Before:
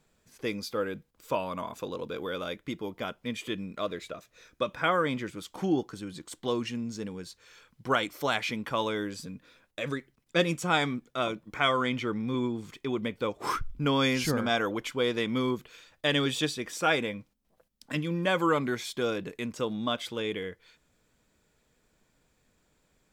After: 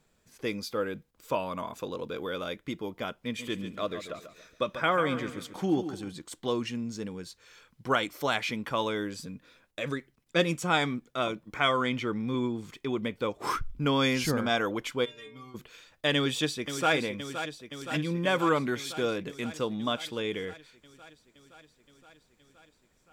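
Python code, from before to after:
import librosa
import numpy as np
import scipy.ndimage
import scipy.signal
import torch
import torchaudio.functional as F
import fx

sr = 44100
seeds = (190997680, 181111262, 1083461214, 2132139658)

y = fx.echo_feedback(x, sr, ms=140, feedback_pct=35, wet_db=-10.5, at=(3.23, 6.12))
y = fx.stiff_resonator(y, sr, f0_hz=140.0, decay_s=0.56, stiffness=0.008, at=(15.04, 15.54), fade=0.02)
y = fx.echo_throw(y, sr, start_s=16.15, length_s=0.78, ms=520, feedback_pct=75, wet_db=-9.5)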